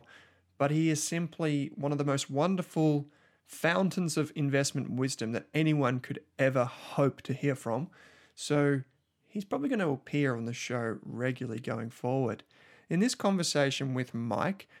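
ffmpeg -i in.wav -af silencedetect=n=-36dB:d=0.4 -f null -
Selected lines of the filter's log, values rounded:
silence_start: 0.00
silence_end: 0.60 | silence_duration: 0.60
silence_start: 3.02
silence_end: 3.53 | silence_duration: 0.51
silence_start: 7.85
silence_end: 8.40 | silence_duration: 0.55
silence_start: 8.81
silence_end: 9.36 | silence_duration: 0.55
silence_start: 12.40
silence_end: 12.91 | silence_duration: 0.51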